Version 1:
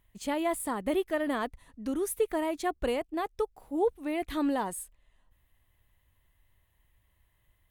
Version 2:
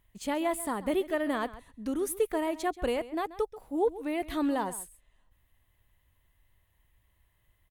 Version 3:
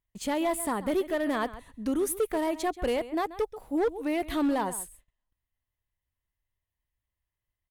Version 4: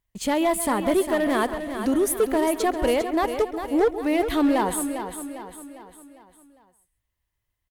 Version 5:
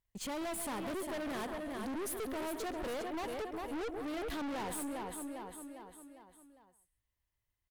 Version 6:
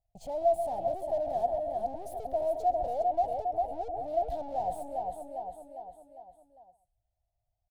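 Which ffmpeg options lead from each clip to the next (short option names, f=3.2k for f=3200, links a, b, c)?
-filter_complex "[0:a]asplit=2[a][b];[b]adelay=134.1,volume=-16dB,highshelf=f=4k:g=-3.02[c];[a][c]amix=inputs=2:normalize=0"
-filter_complex "[0:a]agate=range=-22dB:threshold=-58dB:ratio=16:detection=peak,asplit=2[a][b];[b]alimiter=level_in=0.5dB:limit=-24dB:level=0:latency=1:release=201,volume=-0.5dB,volume=-1dB[c];[a][c]amix=inputs=2:normalize=0,asoftclip=type=hard:threshold=-20dB,volume=-1.5dB"
-af "aecho=1:1:402|804|1206|1608|2010:0.355|0.167|0.0784|0.0368|0.0173,volume=6dB"
-af "aeval=exprs='(tanh(35.5*val(0)+0.3)-tanh(0.3))/35.5':c=same,volume=-6dB"
-af "firequalizer=gain_entry='entry(140,0);entry(200,-14);entry(400,-14);entry(700,15);entry(1100,-28);entry(4200,-16);entry(9200,-18)':delay=0.05:min_phase=1,volume=5dB"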